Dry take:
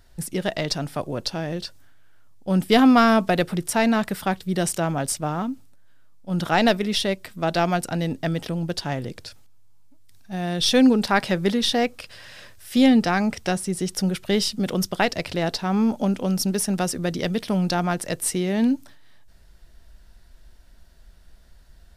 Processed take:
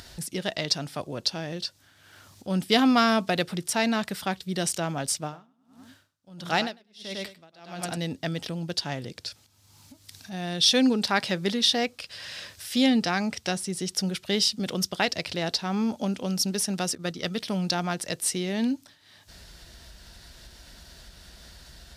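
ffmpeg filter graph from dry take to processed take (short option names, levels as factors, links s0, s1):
-filter_complex "[0:a]asettb=1/sr,asplit=3[s0][s1][s2];[s0]atrim=end=5.224[s3];[s1]atrim=start=5.22:end=7.97,asetpts=PTS-STARTPTS,afade=t=in:d=0.004:c=qsin,afade=t=out:st=2.746:d=0.004:c=qsin,aecho=1:1:101|202|303|404:0.473|0.161|0.0547|0.0186,atrim=end_sample=121275,aeval=exprs='val(0)*pow(10,-38*(0.5-0.5*cos(2*PI*1.5*n/s))/20)':c=same[s4];[s2]atrim=start=7.966[s5];[s3][s4]acrossfade=d=0.004:c1=hsin:c2=qsin[s6];[s6][s5]acrossfade=d=0.004:c1=qsin:c2=hsin,asettb=1/sr,asplit=3[s7][s8][s9];[s7]atrim=end=16.954[s10];[s8]atrim=start=16.95:end=17.4,asetpts=PTS-STARTPTS,afade=t=in:d=0.004:c=qsin,afade=t=out:st=0.446:d=0.004:c=qsin,equalizer=f=1300:w=7.7:g=9.5,agate=range=0.0224:threshold=0.0631:ratio=3:release=100:detection=peak[s11];[s9]atrim=start=17.396[s12];[s10][s11]acrossfade=d=0.004:c1=hsin:c2=qsin[s13];[s13][s12]acrossfade=d=0.004:c1=qsin:c2=hsin,highpass=63,acompressor=mode=upward:threshold=0.0316:ratio=2.5,equalizer=f=4600:t=o:w=1.9:g=8.5,volume=0.501"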